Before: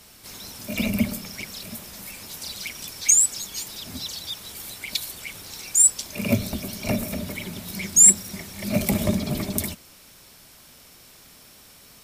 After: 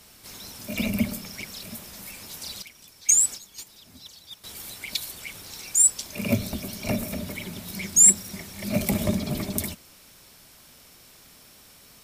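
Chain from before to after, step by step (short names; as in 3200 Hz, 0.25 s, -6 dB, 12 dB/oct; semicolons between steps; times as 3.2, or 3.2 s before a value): 2.62–4.44 gate -29 dBFS, range -12 dB; gain -2 dB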